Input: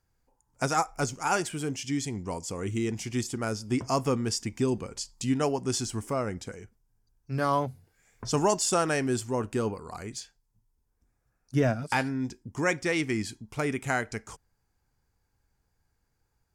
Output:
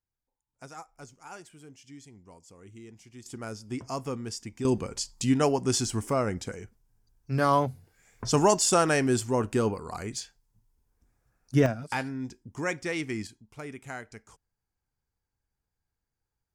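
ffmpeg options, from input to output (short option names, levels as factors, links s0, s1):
-af "asetnsamples=n=441:p=0,asendcmd='3.26 volume volume -7dB;4.65 volume volume 3dB;11.66 volume volume -4dB;13.27 volume volume -11dB',volume=0.126"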